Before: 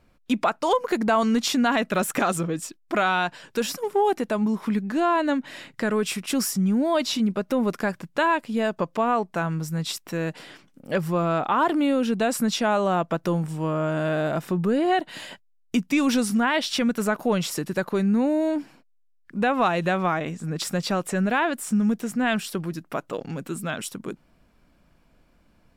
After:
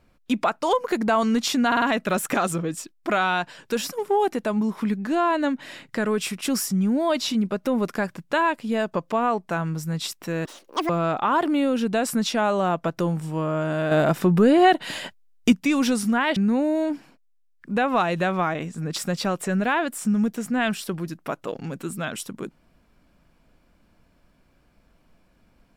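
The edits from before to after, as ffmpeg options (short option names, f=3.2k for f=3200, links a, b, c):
-filter_complex "[0:a]asplit=9[a][b][c][d][e][f][g][h][i];[a]atrim=end=1.722[j];[b]atrim=start=1.668:end=1.722[k];[c]atrim=start=1.668:end=1.722[l];[d]atrim=start=1.668:end=10.304[m];[e]atrim=start=10.3:end=11.16,asetpts=PTS-STARTPTS,asetrate=85554,aresample=44100,atrim=end_sample=19549,asetpts=PTS-STARTPTS[n];[f]atrim=start=11.156:end=14.182[o];[g]atrim=start=14.178:end=15.792,asetpts=PTS-STARTPTS,volume=6dB[p];[h]atrim=start=15.788:end=16.632[q];[i]atrim=start=18.018[r];[j][k]acrossfade=d=0.004:c1=hsin:c2=hsin[s];[s][l]acrossfade=d=0.004:c1=hsin:c2=hsin[t];[t][m]acrossfade=d=0.004:c1=hsin:c2=hsin[u];[u][n]acrossfade=d=0.004:c1=hsin:c2=hsin[v];[v][o]acrossfade=d=0.004:c1=hsin:c2=hsin[w];[w][p]acrossfade=d=0.004:c1=hsin:c2=hsin[x];[x][q]acrossfade=d=0.004:c1=hsin:c2=hsin[y];[y][r]acrossfade=d=0.004:c1=hsin:c2=hsin"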